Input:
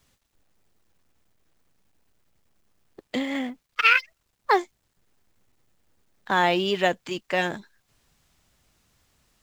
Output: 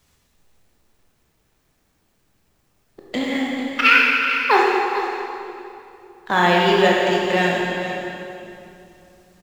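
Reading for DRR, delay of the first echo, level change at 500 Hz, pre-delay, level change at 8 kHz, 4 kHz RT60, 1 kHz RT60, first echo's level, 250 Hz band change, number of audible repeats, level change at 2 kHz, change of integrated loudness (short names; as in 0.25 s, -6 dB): -3.5 dB, 0.445 s, +8.5 dB, 18 ms, +7.0 dB, 2.3 s, 2.6 s, -12.0 dB, +8.0 dB, 1, +7.5 dB, +6.0 dB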